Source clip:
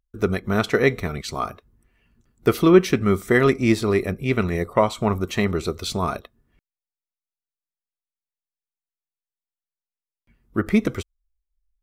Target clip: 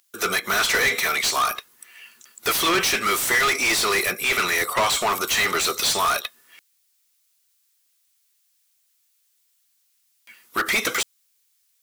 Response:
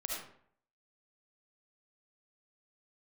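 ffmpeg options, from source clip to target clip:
-filter_complex "[0:a]aderivative,acontrast=78,asplit=2[a][b];[b]highpass=f=720:p=1,volume=33dB,asoftclip=type=tanh:threshold=-12dB[c];[a][c]amix=inputs=2:normalize=0,lowpass=f=5k:p=1,volume=-6dB"

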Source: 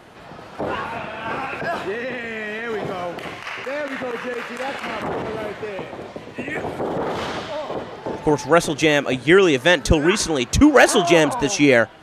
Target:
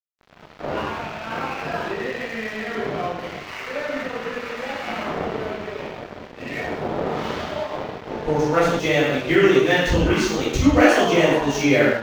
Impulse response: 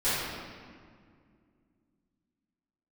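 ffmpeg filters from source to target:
-filter_complex "[1:a]atrim=start_sample=2205,afade=t=out:st=0.34:d=0.01,atrim=end_sample=15435,asetrate=57330,aresample=44100[a];[0:a][a]afir=irnorm=-1:irlink=0,asplit=2[b][c];[c]acompressor=threshold=-14dB:ratio=6,volume=-1.5dB[d];[b][d]amix=inputs=2:normalize=0,aeval=exprs='sgn(val(0))*max(abs(val(0))-0.0944,0)':c=same,equalizer=f=9.3k:w=1.3:g=-10,volume=-12.5dB"

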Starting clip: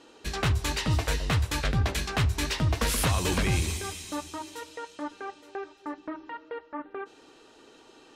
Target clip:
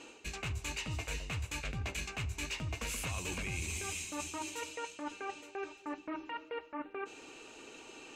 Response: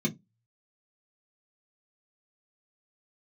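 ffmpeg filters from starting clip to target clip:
-af "superequalizer=12b=2.82:15b=2.24,areverse,acompressor=threshold=-38dB:ratio=6,areverse,volume=1dB"

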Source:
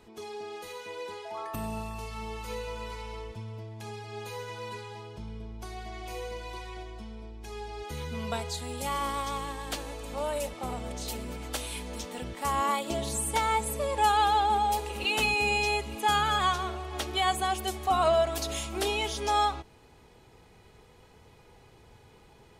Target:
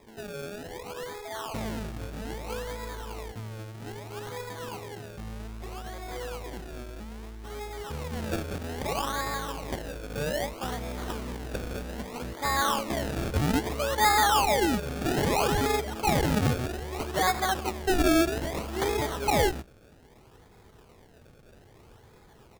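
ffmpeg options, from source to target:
-filter_complex "[0:a]aecho=1:1:113:0.0794,asettb=1/sr,asplit=3[a][b][c];[a]atrim=end=14.884[d];[b]atrim=start=14.88:end=15.94,asetpts=PTS-STARTPTS,afade=t=in:d=0.004:c=qsin,afade=t=out:st=1.056:d=0.004:c=qsin,aeval=exprs='val(0)+0.0126*sin(2*PI*3200*n/s)':c=same[e];[c]atrim=start=15.936[f];[d][e]acrossfade=d=0.004:c1=hsin:c2=qsin[g];[g][f]acrossfade=d=0.004:c1=qsin:c2=hsin,acrusher=samples=30:mix=1:aa=0.000001:lfo=1:lforange=30:lforate=0.62,volume=1.5dB"

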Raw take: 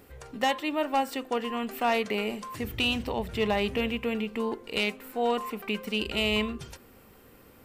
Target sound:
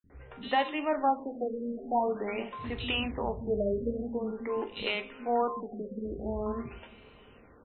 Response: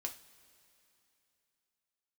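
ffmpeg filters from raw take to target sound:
-filter_complex "[0:a]acrossover=split=230|3700[a][b][c];[a]adelay=40[d];[b]adelay=100[e];[d][e][c]amix=inputs=3:normalize=0,asplit=2[f][g];[1:a]atrim=start_sample=2205,asetrate=35280,aresample=44100[h];[g][h]afir=irnorm=-1:irlink=0,volume=0.5dB[i];[f][i]amix=inputs=2:normalize=0,afftfilt=real='re*lt(b*sr/1024,630*pow(4300/630,0.5+0.5*sin(2*PI*0.46*pts/sr)))':imag='im*lt(b*sr/1024,630*pow(4300/630,0.5+0.5*sin(2*PI*0.46*pts/sr)))':win_size=1024:overlap=0.75,volume=-6.5dB"

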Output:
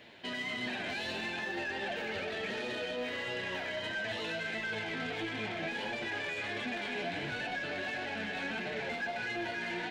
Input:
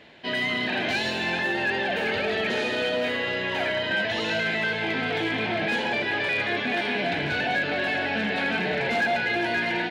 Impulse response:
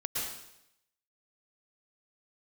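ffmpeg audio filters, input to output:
-filter_complex "[0:a]aemphasis=mode=production:type=50fm,acrossover=split=5600[a][b];[b]acompressor=threshold=-51dB:ratio=4:attack=1:release=60[c];[a][c]amix=inputs=2:normalize=0,highshelf=f=5.7k:g=-8,alimiter=limit=-23.5dB:level=0:latency=1:release=24,asoftclip=type=tanh:threshold=-27dB,flanger=delay=8.2:depth=3.9:regen=39:speed=1.5:shape=sinusoidal"

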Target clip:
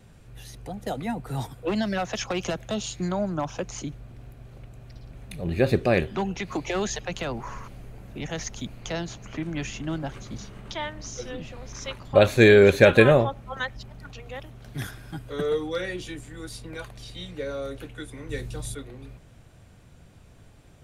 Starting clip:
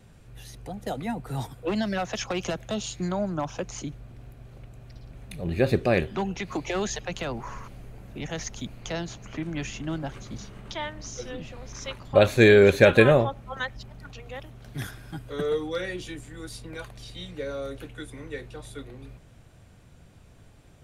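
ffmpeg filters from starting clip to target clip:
-filter_complex "[0:a]asettb=1/sr,asplit=3[a][b][c];[a]atrim=end=18.294[d];[b]atrim=start=18.29:end=18.75,asetpts=PTS-STARTPTS,afade=t=in:d=0.004:c=qsin,afade=t=out:st=0.456:d=0.004:c=qsin,bass=f=250:g=9,treble=f=4k:g=11[e];[c]atrim=start=18.746[f];[d][e]acrossfade=d=0.004:c1=hsin:c2=qsin[g];[g][f]acrossfade=d=0.004:c1=qsin:c2=hsin,volume=1dB"

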